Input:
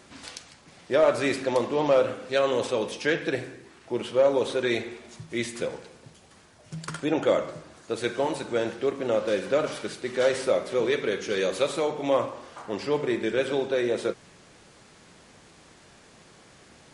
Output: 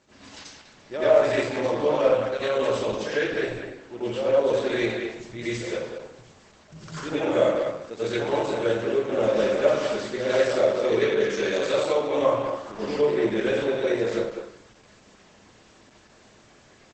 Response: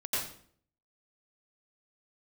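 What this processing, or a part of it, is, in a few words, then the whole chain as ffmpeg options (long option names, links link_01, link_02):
speakerphone in a meeting room: -filter_complex "[1:a]atrim=start_sample=2205[link_01];[0:a][link_01]afir=irnorm=-1:irlink=0,asplit=2[link_02][link_03];[link_03]adelay=200,highpass=300,lowpass=3400,asoftclip=type=hard:threshold=-11dB,volume=-6dB[link_04];[link_02][link_04]amix=inputs=2:normalize=0,dynaudnorm=framelen=380:gausssize=21:maxgain=10dB,volume=-5.5dB" -ar 48000 -c:a libopus -b:a 12k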